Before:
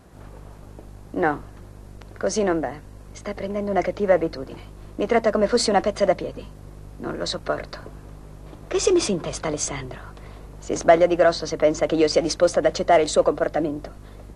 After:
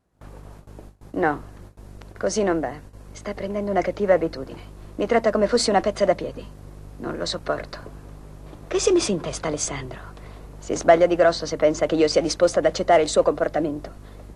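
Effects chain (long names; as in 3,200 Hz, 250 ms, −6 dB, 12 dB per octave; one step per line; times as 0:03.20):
noise gate with hold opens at −32 dBFS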